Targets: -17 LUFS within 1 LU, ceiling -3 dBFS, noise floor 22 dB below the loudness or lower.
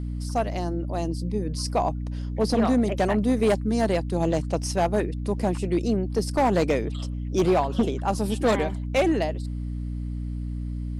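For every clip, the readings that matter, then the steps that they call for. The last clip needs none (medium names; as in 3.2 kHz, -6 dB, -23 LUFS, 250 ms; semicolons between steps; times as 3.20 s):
clipped samples 1.4%; clipping level -15.0 dBFS; hum 60 Hz; highest harmonic 300 Hz; hum level -28 dBFS; loudness -25.5 LUFS; peak level -15.0 dBFS; loudness target -17.0 LUFS
-> clip repair -15 dBFS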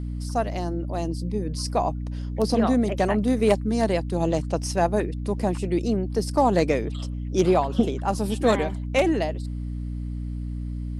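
clipped samples 0.0%; hum 60 Hz; highest harmonic 300 Hz; hum level -28 dBFS
-> hum notches 60/120/180/240/300 Hz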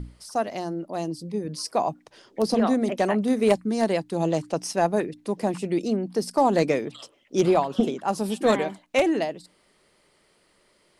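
hum not found; loudness -25.0 LUFS; peak level -6.5 dBFS; loudness target -17.0 LUFS
-> trim +8 dB; peak limiter -3 dBFS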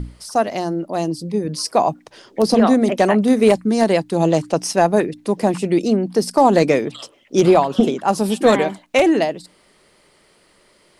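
loudness -17.5 LUFS; peak level -3.0 dBFS; noise floor -56 dBFS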